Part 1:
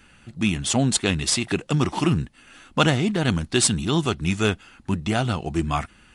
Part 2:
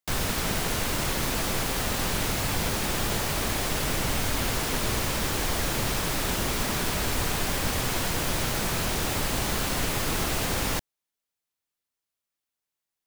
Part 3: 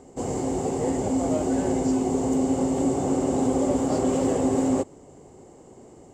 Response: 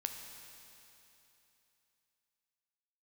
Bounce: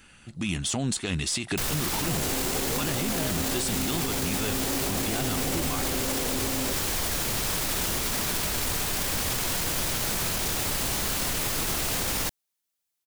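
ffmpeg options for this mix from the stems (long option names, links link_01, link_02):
-filter_complex "[0:a]alimiter=limit=-15.5dB:level=0:latency=1:release=18,aeval=exprs='0.168*(cos(1*acos(clip(val(0)/0.168,-1,1)))-cos(1*PI/2))+0.0119*(cos(2*acos(clip(val(0)/0.168,-1,1)))-cos(2*PI/2))':channel_layout=same,volume=-2.5dB[link_01];[1:a]adelay=1500,volume=-1dB[link_02];[2:a]acompressor=threshold=-26dB:ratio=6,adelay=1900,volume=0dB[link_03];[link_01][link_02][link_03]amix=inputs=3:normalize=0,highshelf=frequency=3600:gain=7.5,alimiter=limit=-18.5dB:level=0:latency=1:release=15"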